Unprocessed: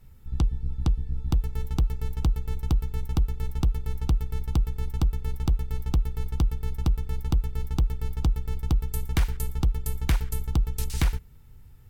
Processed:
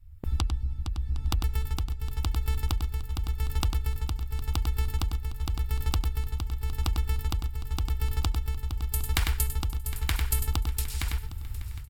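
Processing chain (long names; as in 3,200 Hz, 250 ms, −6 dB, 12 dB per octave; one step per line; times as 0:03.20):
downward compressor 6 to 1, threshold −27 dBFS, peak gain reduction 9 dB
low shelf with overshoot 120 Hz +12 dB, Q 3
slap from a distant wall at 17 metres, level −7 dB
shaped tremolo triangle 0.89 Hz, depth 75%
parametric band 440 Hz −10.5 dB 1.8 octaves
notch filter 6,100 Hz, Q 10
repeating echo 760 ms, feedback 53%, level −17.5 dB
noise gate with hold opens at −28 dBFS
every bin compressed towards the loudest bin 2 to 1
level −1.5 dB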